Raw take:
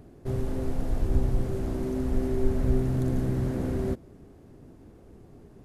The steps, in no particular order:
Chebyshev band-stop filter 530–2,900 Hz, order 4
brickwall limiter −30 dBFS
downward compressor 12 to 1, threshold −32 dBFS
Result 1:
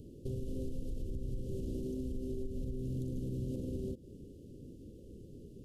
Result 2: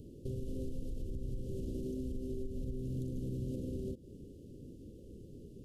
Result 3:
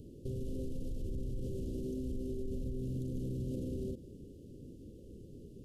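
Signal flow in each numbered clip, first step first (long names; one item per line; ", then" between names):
Chebyshev band-stop filter, then downward compressor, then brickwall limiter
downward compressor, then brickwall limiter, then Chebyshev band-stop filter
brickwall limiter, then Chebyshev band-stop filter, then downward compressor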